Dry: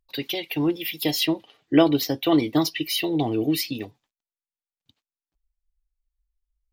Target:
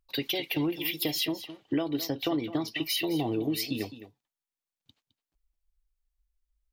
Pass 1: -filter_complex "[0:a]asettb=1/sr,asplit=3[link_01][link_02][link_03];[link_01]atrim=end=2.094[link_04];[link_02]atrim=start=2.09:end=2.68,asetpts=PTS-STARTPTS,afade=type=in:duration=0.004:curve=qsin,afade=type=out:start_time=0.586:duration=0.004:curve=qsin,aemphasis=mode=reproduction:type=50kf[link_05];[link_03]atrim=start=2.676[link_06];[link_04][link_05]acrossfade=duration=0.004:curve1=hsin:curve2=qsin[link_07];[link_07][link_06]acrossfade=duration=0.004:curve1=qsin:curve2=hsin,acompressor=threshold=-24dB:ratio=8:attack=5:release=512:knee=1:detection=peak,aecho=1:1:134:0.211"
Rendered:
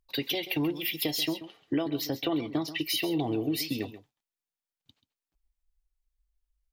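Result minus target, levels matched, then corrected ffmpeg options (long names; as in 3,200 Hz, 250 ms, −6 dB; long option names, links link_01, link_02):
echo 78 ms early
-filter_complex "[0:a]asettb=1/sr,asplit=3[link_01][link_02][link_03];[link_01]atrim=end=2.094[link_04];[link_02]atrim=start=2.09:end=2.68,asetpts=PTS-STARTPTS,afade=type=in:duration=0.004:curve=qsin,afade=type=out:start_time=0.586:duration=0.004:curve=qsin,aemphasis=mode=reproduction:type=50kf[link_05];[link_03]atrim=start=2.676[link_06];[link_04][link_05]acrossfade=duration=0.004:curve1=hsin:curve2=qsin[link_07];[link_07][link_06]acrossfade=duration=0.004:curve1=qsin:curve2=hsin,acompressor=threshold=-24dB:ratio=8:attack=5:release=512:knee=1:detection=peak,aecho=1:1:212:0.211"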